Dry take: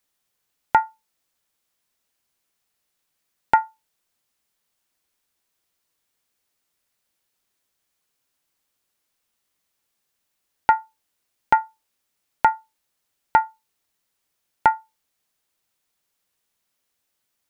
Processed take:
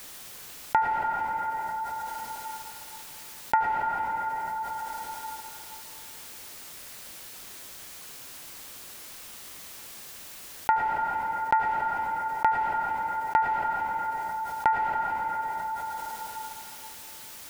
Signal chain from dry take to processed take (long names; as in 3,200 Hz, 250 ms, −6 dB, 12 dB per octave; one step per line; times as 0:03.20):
convolution reverb RT60 2.6 s, pre-delay 68 ms, DRR 15.5 dB
envelope flattener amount 70%
level −7.5 dB